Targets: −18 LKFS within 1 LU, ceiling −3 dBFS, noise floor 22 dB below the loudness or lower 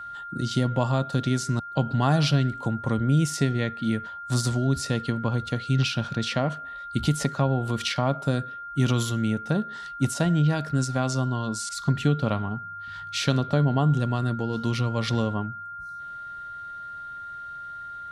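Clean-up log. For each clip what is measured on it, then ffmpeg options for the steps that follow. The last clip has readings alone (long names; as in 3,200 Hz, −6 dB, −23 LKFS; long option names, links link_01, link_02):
interfering tone 1,400 Hz; level of the tone −35 dBFS; integrated loudness −25.5 LKFS; sample peak −8.5 dBFS; target loudness −18.0 LKFS
→ -af "bandreject=frequency=1400:width=30"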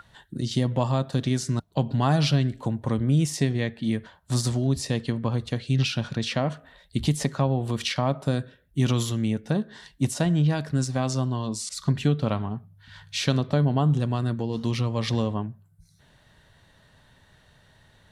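interfering tone none found; integrated loudness −26.0 LKFS; sample peak −8.0 dBFS; target loudness −18.0 LKFS
→ -af "volume=8dB,alimiter=limit=-3dB:level=0:latency=1"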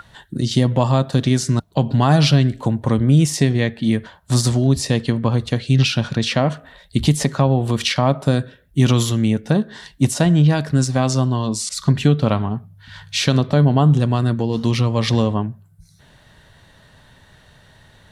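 integrated loudness −18.0 LKFS; sample peak −3.0 dBFS; background noise floor −51 dBFS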